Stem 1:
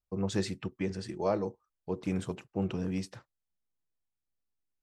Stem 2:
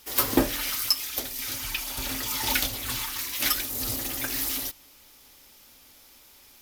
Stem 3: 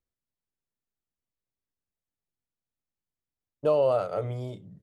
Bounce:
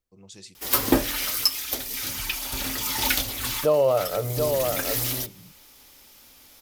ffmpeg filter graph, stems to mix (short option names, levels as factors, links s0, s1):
-filter_complex "[0:a]aexciter=amount=4.9:drive=5.3:freq=2300,volume=0.112[s0];[1:a]adelay=550,volume=1.26[s1];[2:a]volume=1.41,asplit=3[s2][s3][s4];[s3]volume=0.562[s5];[s4]apad=whole_len=320539[s6];[s1][s6]sidechaincompress=threshold=0.0251:ratio=8:attack=39:release=348[s7];[s5]aecho=0:1:732:1[s8];[s0][s7][s2][s8]amix=inputs=4:normalize=0"